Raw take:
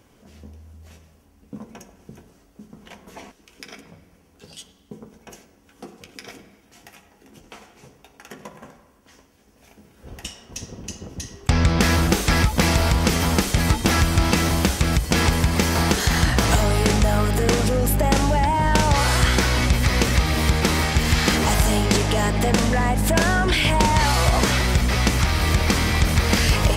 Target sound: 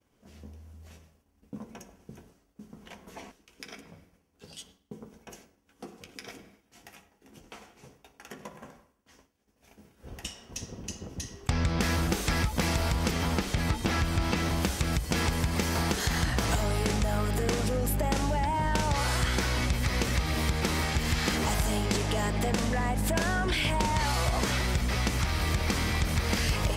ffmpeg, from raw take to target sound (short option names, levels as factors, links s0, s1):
-filter_complex "[0:a]asettb=1/sr,asplit=3[s0][s1][s2];[s0]atrim=end=13.114[s3];[s1]atrim=start=13.11:end=14.62,asetpts=PTS-STARTPTS,afade=t=in:d=0.004:c=qsin,afade=t=out:st=1.506:d=0.004:c=qsin,acrossover=split=5300[s4][s5];[s5]acompressor=threshold=0.0158:ratio=4:attack=1:release=60[s6];[s4][s6]amix=inputs=2:normalize=0[s7];[s2]atrim=start=14.616[s8];[s3][s7]acrossfade=d=0.004:c1=hsin:c2=qsin[s9];[s9][s8]acrossfade=d=0.004:c1=qsin:c2=hsin,agate=range=0.0224:threshold=0.00398:ratio=3:detection=peak,acompressor=threshold=0.0708:ratio=2,volume=0.596"